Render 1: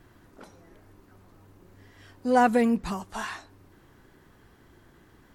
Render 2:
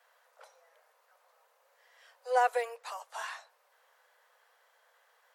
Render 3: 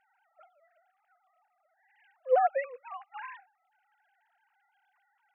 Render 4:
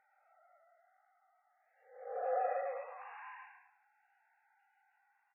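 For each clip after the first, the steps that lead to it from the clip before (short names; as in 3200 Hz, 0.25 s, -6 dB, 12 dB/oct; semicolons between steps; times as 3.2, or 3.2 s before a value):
steep high-pass 480 Hz 96 dB/oct; gain -5 dB
sine-wave speech; gain +2 dB
time blur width 0.408 s; on a send: echo 0.112 s -11 dB; on the sum: gain +2.5 dB; MP3 8 kbps 11025 Hz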